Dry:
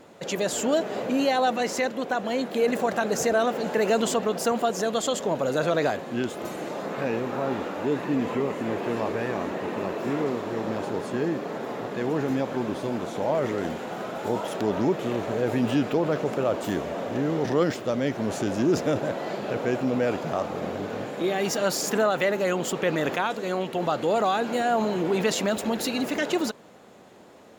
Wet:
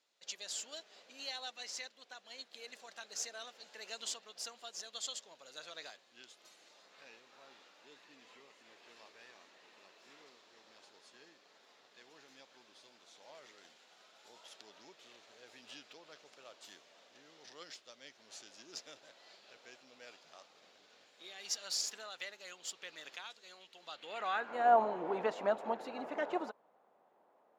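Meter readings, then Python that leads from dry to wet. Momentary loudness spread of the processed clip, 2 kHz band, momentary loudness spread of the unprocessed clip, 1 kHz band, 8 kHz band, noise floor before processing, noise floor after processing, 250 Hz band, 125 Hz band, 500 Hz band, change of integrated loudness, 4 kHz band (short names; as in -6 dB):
22 LU, -16.0 dB, 7 LU, -11.5 dB, -10.5 dB, -37 dBFS, -69 dBFS, -27.0 dB, -34.0 dB, -18.5 dB, -13.5 dB, -10.0 dB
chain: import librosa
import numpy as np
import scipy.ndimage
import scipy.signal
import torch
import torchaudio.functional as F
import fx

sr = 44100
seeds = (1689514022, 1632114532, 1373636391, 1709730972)

y = fx.filter_sweep_bandpass(x, sr, from_hz=4700.0, to_hz=850.0, start_s=23.83, end_s=24.7, q=1.7)
y = fx.upward_expand(y, sr, threshold_db=-53.0, expansion=1.5)
y = y * librosa.db_to_amplitude(1.0)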